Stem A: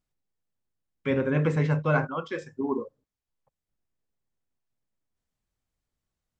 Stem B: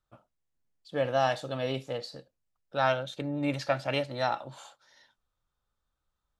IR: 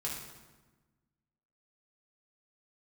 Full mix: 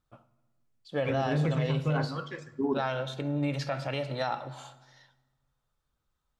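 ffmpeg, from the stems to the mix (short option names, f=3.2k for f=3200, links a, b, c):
-filter_complex "[0:a]aphaser=in_gain=1:out_gain=1:delay=1.1:decay=0.56:speed=1.5:type=triangular,volume=-7dB,asplit=2[a][b];[b]volume=-14dB[c];[1:a]highshelf=f=7.9k:g=-4.5,volume=0dB,asplit=2[d][e];[e]volume=-12.5dB[f];[2:a]atrim=start_sample=2205[g];[c][f]amix=inputs=2:normalize=0[h];[h][g]afir=irnorm=-1:irlink=0[i];[a][d][i]amix=inputs=3:normalize=0,alimiter=limit=-19.5dB:level=0:latency=1:release=85"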